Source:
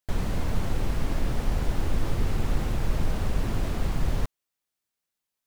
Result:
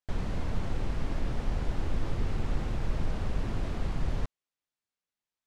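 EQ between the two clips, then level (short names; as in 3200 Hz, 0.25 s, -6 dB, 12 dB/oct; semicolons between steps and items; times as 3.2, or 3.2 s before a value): air absorption 62 m; -4.5 dB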